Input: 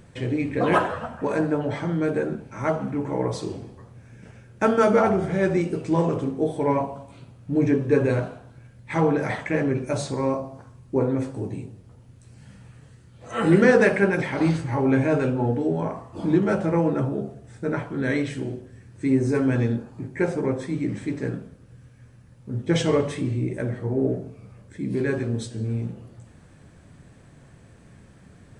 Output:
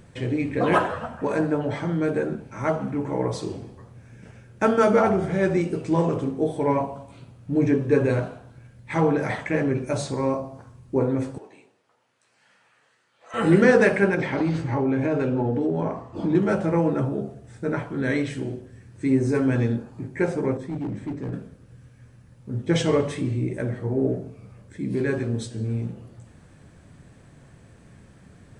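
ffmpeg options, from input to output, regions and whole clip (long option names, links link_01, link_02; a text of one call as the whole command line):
ffmpeg -i in.wav -filter_complex "[0:a]asettb=1/sr,asplit=3[link_01][link_02][link_03];[link_01]atrim=end=11.384[link_04];[link_02]atrim=start=11.38:end=13.34,asetpts=PTS-STARTPTS,afade=type=in:duration=0.004:curve=qsin,afade=type=out:start_time=1.956:duration=0.004:curve=qsin,highpass=860,aemphasis=mode=reproduction:type=50fm[link_05];[link_03]atrim=start=13.336[link_06];[link_04][link_05]acrossfade=duration=0.004:curve1=hsin:curve2=qsin[link_07];[link_07][link_06]acrossfade=duration=0.004:curve1=qsin:curve2=hsin,asettb=1/sr,asplit=3[link_08][link_09][link_10];[link_08]atrim=end=14.144[link_11];[link_09]atrim=start=14.14:end=16.35,asetpts=PTS-STARTPTS,afade=type=in:duration=0.004:curve=qsin,afade=type=out:start_time=2.206:duration=0.004:curve=qsin,lowpass=6200,equalizer=frequency=330:width_type=o:width=1.8:gain=3.5,acompressor=threshold=-19dB:ratio=6:attack=3.2:release=140:knee=1:detection=peak[link_12];[link_10]atrim=start=16.346[link_13];[link_11][link_12]acrossfade=duration=0.004:curve1=hsin:curve2=qsin[link_14];[link_14][link_13]acrossfade=duration=0.004:curve1=qsin:curve2=hsin,asettb=1/sr,asplit=3[link_15][link_16][link_17];[link_15]atrim=end=20.574[link_18];[link_16]atrim=start=20.57:end=21.33,asetpts=PTS-STARTPTS,afade=type=in:duration=0.004:curve=qsin,afade=type=out:start_time=0.756:duration=0.004:curve=qsin,highshelf=frequency=2000:gain=-11,acrossover=split=370|3000[link_19][link_20][link_21];[link_20]acompressor=threshold=-48dB:ratio=1.5:attack=3.2:release=140:knee=2.83:detection=peak[link_22];[link_19][link_22][link_21]amix=inputs=3:normalize=0,asoftclip=type=hard:threshold=-25.5dB[link_23];[link_17]atrim=start=21.326[link_24];[link_18][link_23]acrossfade=duration=0.004:curve1=hsin:curve2=qsin[link_25];[link_25][link_24]acrossfade=duration=0.004:curve1=qsin:curve2=hsin" out.wav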